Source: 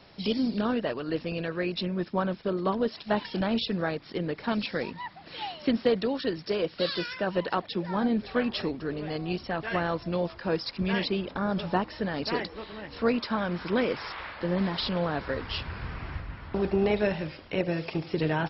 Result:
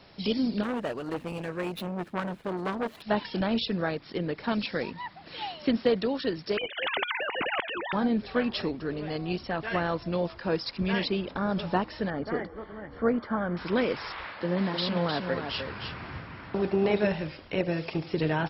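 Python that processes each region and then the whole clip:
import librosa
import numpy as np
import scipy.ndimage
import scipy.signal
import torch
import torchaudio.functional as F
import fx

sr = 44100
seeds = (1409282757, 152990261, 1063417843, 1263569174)

y = fx.chain(x, sr, fx.median_filter(points=9),
    fx.transformer_sat(knee_hz=1300.0), at=(0.63, 3.02))
y = fx.chain(y, sr, fx.sine_speech(),
    fx.spectral_comp(ratio=4.0), at=(6.57, 7.93))
y = fx.chain(y, sr, fx.savgol(points=41),
    fx.notch(hz=970.0, q=8.5), at=(12.1, 13.57))
y = fx.chain(y, sr, fx.highpass(hz=120.0, slope=12),
    fx.echo_single(ms=307, db=-6.0), at=(14.26, 17.12))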